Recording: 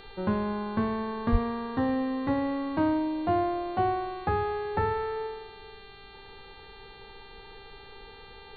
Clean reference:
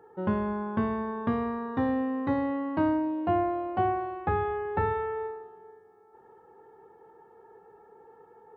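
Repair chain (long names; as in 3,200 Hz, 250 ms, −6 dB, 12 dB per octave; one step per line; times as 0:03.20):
hum removal 396.5 Hz, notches 11
high-pass at the plosives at 0:01.31
broadband denoise 8 dB, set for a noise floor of −48 dBFS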